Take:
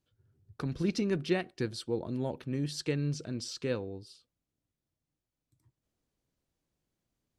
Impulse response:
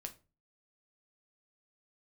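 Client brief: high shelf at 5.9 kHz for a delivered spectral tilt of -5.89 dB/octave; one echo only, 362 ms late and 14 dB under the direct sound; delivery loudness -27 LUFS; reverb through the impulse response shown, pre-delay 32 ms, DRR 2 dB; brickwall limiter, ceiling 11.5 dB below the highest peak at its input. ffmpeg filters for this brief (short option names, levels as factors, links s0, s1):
-filter_complex "[0:a]highshelf=f=5900:g=-6.5,alimiter=level_in=1.78:limit=0.0631:level=0:latency=1,volume=0.562,aecho=1:1:362:0.2,asplit=2[s0][s1];[1:a]atrim=start_sample=2205,adelay=32[s2];[s1][s2]afir=irnorm=-1:irlink=0,volume=1.19[s3];[s0][s3]amix=inputs=2:normalize=0,volume=3.16"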